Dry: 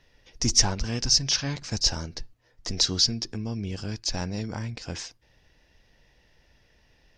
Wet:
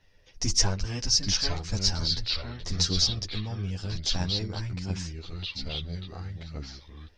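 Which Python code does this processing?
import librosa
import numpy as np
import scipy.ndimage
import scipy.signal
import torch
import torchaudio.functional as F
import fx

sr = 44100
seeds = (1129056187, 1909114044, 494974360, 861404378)

y = fx.echo_pitch(x, sr, ms=734, semitones=-3, count=2, db_per_echo=-6.0)
y = fx.chorus_voices(y, sr, voices=4, hz=0.59, base_ms=11, depth_ms=1.3, mix_pct=50)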